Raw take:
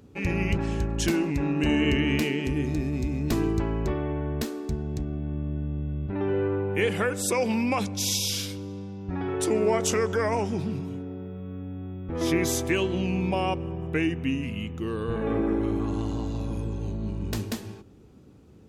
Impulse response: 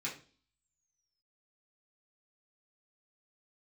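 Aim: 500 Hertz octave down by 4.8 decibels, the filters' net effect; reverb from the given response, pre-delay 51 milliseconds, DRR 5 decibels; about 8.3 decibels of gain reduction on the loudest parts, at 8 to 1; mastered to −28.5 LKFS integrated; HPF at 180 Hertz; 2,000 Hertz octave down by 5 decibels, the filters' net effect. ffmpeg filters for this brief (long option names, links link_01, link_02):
-filter_complex "[0:a]highpass=180,equalizer=frequency=500:width_type=o:gain=-6,equalizer=frequency=2000:width_type=o:gain=-6,acompressor=threshold=-32dB:ratio=8,asplit=2[link_01][link_02];[1:a]atrim=start_sample=2205,adelay=51[link_03];[link_02][link_03]afir=irnorm=-1:irlink=0,volume=-7dB[link_04];[link_01][link_04]amix=inputs=2:normalize=0,volume=6.5dB"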